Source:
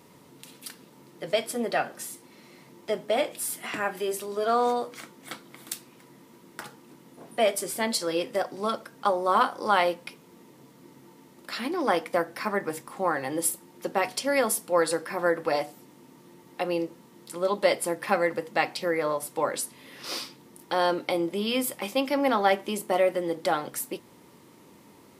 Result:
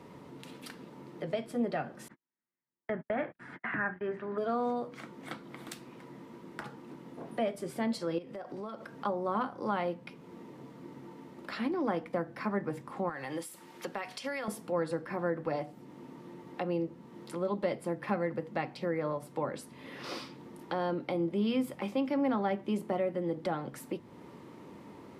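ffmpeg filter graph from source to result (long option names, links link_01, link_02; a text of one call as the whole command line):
ffmpeg -i in.wav -filter_complex "[0:a]asettb=1/sr,asplit=3[link_01][link_02][link_03];[link_01]atrim=end=2.084[link_04];[link_02]atrim=start=2.08:end=4.38,asetpts=PTS-STARTPTS,afade=type=in:duration=0.004:curve=qsin,afade=type=out:start_time=2.296:duration=0.004:curve=qsin,agate=range=-51dB:threshold=-40dB:ratio=16:release=100:detection=peak,lowpass=frequency=1700:width_type=q:width=4.8,equalizer=frequency=470:width_type=o:width=0.68:gain=-4[link_05];[link_03]atrim=start=4.376[link_06];[link_04][link_05]acrossfade=duration=0.004:curve1=hsin:curve2=qsin[link_07];[link_07][link_06]acrossfade=duration=0.004:curve1=qsin:curve2=hsin,asettb=1/sr,asplit=3[link_08][link_09][link_10];[link_08]atrim=end=8.184[link_11];[link_09]atrim=start=8.18:end=8.95,asetpts=PTS-STARTPTS,afade=type=in:duration=0.004:curve=qsin,afade=type=out:start_time=0.766:duration=0.004:curve=qsin,highpass=46,acompressor=threshold=-39dB:ratio=4:attack=3.2:release=140:knee=1:detection=peak[link_12];[link_10]atrim=start=8.946[link_13];[link_11][link_12]acrossfade=duration=0.004:curve1=hsin:curve2=qsin[link_14];[link_14][link_13]acrossfade=duration=0.004:curve1=qsin:curve2=hsin,asettb=1/sr,asplit=3[link_15][link_16][link_17];[link_15]atrim=end=13.094[link_18];[link_16]atrim=start=13.09:end=14.48,asetpts=PTS-STARTPTS,afade=type=in:duration=0.004:curve=qsin,afade=type=out:start_time=1.386:duration=0.004:curve=qsin,tiltshelf=frequency=870:gain=-8,acompressor=threshold=-28dB:ratio=3:attack=3.2:release=140:knee=1:detection=peak[link_19];[link_17]atrim=start=14.476[link_20];[link_18][link_19]acrossfade=duration=0.004:curve1=hsin:curve2=qsin[link_21];[link_21][link_20]acrossfade=duration=0.004:curve1=qsin:curve2=hsin,lowpass=frequency=4000:poles=1,highshelf=frequency=3000:gain=-9,acrossover=split=230[link_22][link_23];[link_23]acompressor=threshold=-47dB:ratio=2[link_24];[link_22][link_24]amix=inputs=2:normalize=0,volume=4.5dB" out.wav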